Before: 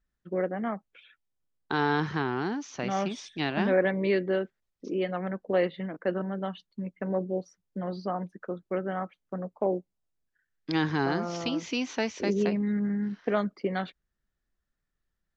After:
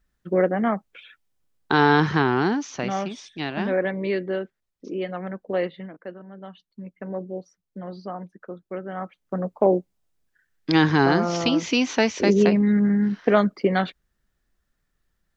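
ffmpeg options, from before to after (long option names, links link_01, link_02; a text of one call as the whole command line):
ffmpeg -i in.wav -af "volume=30dB,afade=type=out:start_time=2.47:duration=0.58:silence=0.375837,afade=type=out:start_time=5.64:duration=0.54:silence=0.237137,afade=type=in:start_time=6.18:duration=0.76:silence=0.316228,afade=type=in:start_time=8.89:duration=0.62:silence=0.281838" out.wav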